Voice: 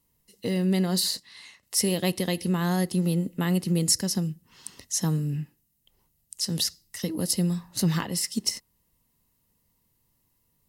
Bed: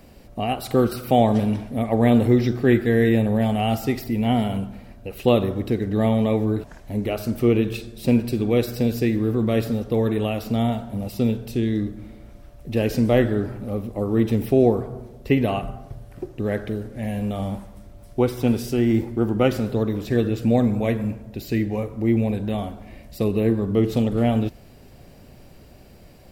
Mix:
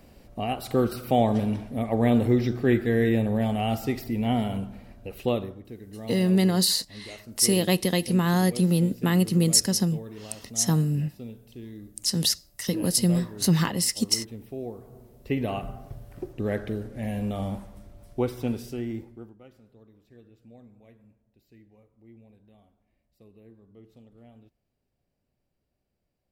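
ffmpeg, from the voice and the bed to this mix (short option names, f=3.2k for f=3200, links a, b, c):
-filter_complex "[0:a]adelay=5650,volume=3dB[a];[1:a]volume=11dB,afade=t=out:st=5.1:d=0.5:silence=0.188365,afade=t=in:st=14.8:d=1.1:silence=0.16788,afade=t=out:st=17.76:d=1.6:silence=0.0354813[b];[a][b]amix=inputs=2:normalize=0"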